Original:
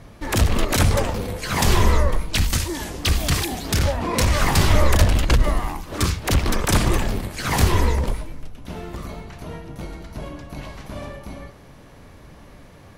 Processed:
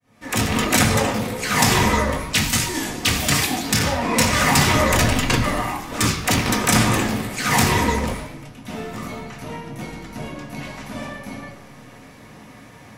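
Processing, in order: fade-in on the opening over 0.55 s; in parallel at -6 dB: hard clipper -12 dBFS, distortion -15 dB; on the sum: reverberation RT60 1.0 s, pre-delay 3 ms, DRR 0.5 dB

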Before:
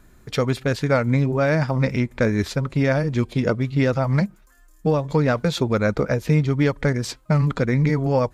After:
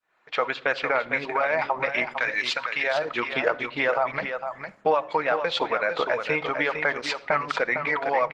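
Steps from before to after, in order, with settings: fade-in on the opening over 1.17 s; Chebyshev band-pass 750–2800 Hz, order 2; reverb removal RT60 0.8 s; 0.83–1.53 s: gate -47 dBFS, range -23 dB; 2.06–2.84 s: tilt shelf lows -10 dB; in parallel at +1.5 dB: compression 6:1, threshold -35 dBFS, peak gain reduction 14.5 dB; on the sum: peak limiter -17.5 dBFS, peak gain reduction 9.5 dB; gain riding within 3 dB 0.5 s; delay 455 ms -7.5 dB; simulated room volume 2400 m³, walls furnished, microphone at 0.61 m; trim +5.5 dB; Opus 16 kbps 48 kHz

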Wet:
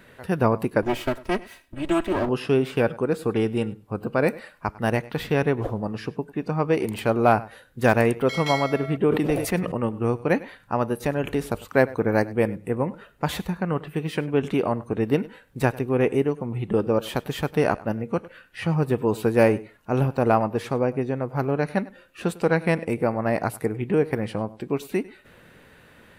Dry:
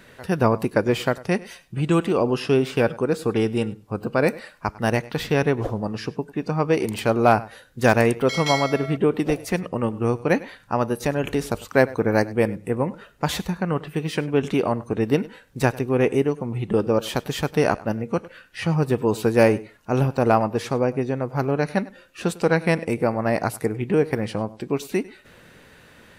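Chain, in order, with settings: 0.82–2.29 s: comb filter that takes the minimum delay 3.1 ms; peaking EQ 5.8 kHz -7 dB 1.1 oct; 8.97–9.72 s: decay stretcher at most 66 dB/s; trim -1.5 dB

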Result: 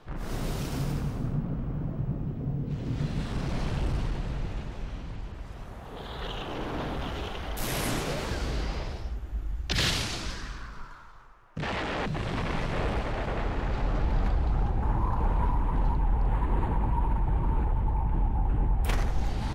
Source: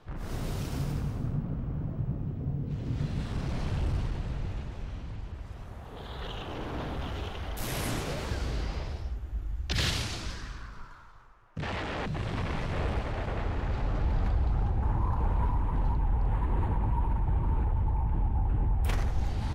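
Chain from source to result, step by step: peaking EQ 84 Hz -7.5 dB 0.8 oct; trim +3.5 dB

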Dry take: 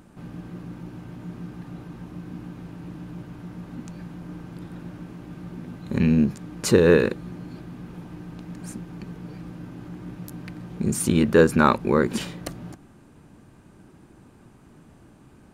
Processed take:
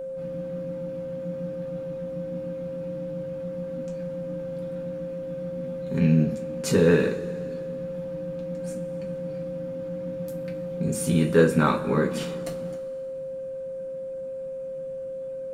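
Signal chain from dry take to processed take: two-slope reverb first 0.22 s, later 2.3 s, from -22 dB, DRR -1 dB; whistle 530 Hz -24 dBFS; trim -7 dB

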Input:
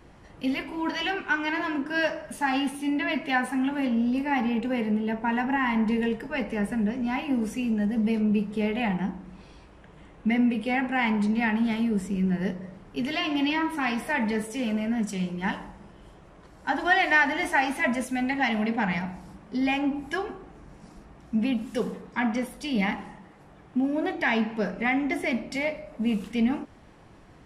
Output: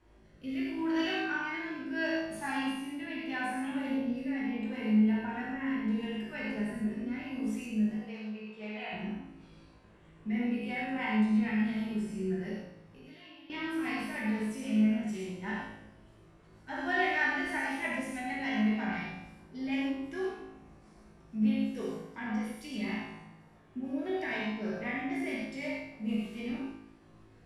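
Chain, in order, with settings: 7.91–8.93 s: three-band isolator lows -19 dB, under 450 Hz, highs -24 dB, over 7.2 kHz; 12.61–13.50 s: compression 8:1, threshold -42 dBFS, peak gain reduction 19.5 dB; rotary cabinet horn 0.75 Hz, later 6.3 Hz, at 7.38 s; feedback comb 54 Hz, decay 0.81 s, harmonics all, mix 90%; reverberation, pre-delay 3 ms, DRR -3.5 dB

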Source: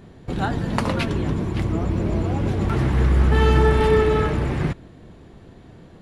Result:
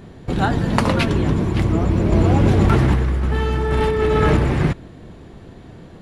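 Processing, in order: 2.12–4.37 s: compressor with a negative ratio -21 dBFS, ratio -1; trim +5 dB

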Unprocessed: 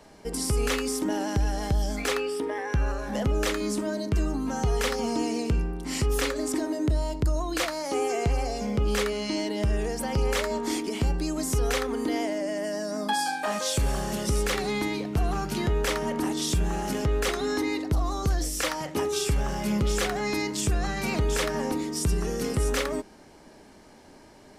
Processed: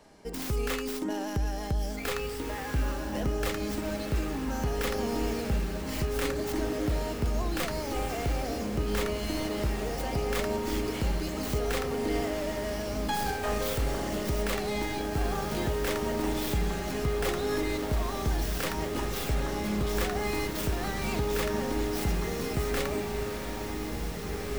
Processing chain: tracing distortion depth 0.23 ms; echo that smears into a reverb 1977 ms, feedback 66%, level -5 dB; trim -4.5 dB

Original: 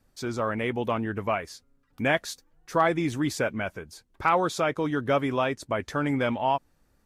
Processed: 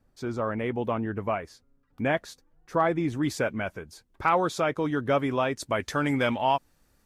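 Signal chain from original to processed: treble shelf 2.1 kHz -10 dB, from 3.23 s -2.5 dB, from 5.56 s +6 dB

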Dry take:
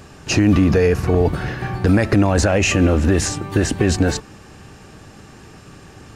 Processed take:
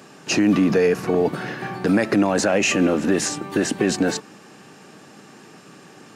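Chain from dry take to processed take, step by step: high-pass 170 Hz 24 dB/octave; trim -1.5 dB

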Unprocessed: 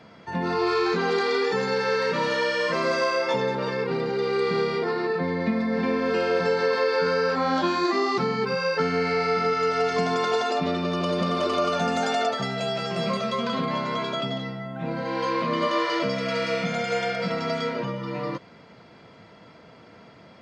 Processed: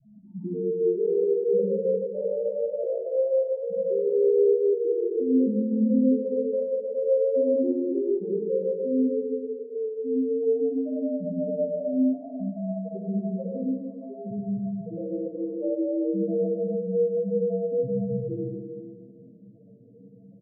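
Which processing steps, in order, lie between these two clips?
rattle on loud lows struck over -38 dBFS, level -18 dBFS; saturation -22.5 dBFS, distortion -12 dB; early reflections 15 ms -3.5 dB, 60 ms -16.5 dB; vibrato 0.3 Hz 25 cents; loudest bins only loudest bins 1; steep low-pass 600 Hz 72 dB/octave; reverberation RT60 1.9 s, pre-delay 48 ms, DRR -5 dB; trim +3.5 dB

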